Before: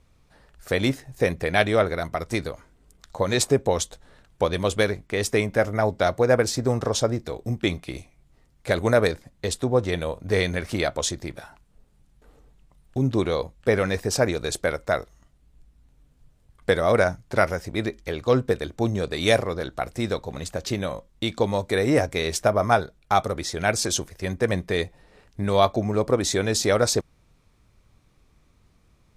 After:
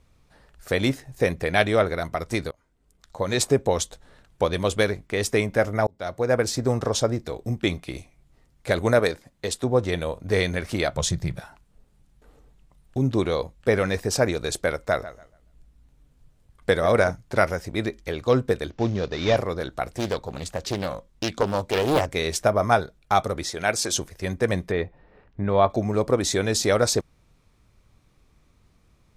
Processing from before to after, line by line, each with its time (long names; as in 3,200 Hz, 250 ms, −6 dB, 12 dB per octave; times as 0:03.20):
0:02.51–0:03.50: fade in, from −23.5 dB
0:05.87–0:06.72: fade in equal-power
0:08.99–0:09.64: low-shelf EQ 150 Hz −8.5 dB
0:10.93–0:11.40: low shelf with overshoot 210 Hz +7 dB, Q 3
0:14.74–0:17.11: feedback echo with a low-pass in the loop 142 ms, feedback 24%, low-pass 4,200 Hz, level −15 dB
0:18.70–0:19.37: variable-slope delta modulation 32 kbit/s
0:19.87–0:22.15: highs frequency-modulated by the lows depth 0.79 ms
0:23.50–0:23.93: low-shelf EQ 200 Hz −9.5 dB
0:24.71–0:25.70: low-pass filter 2,000 Hz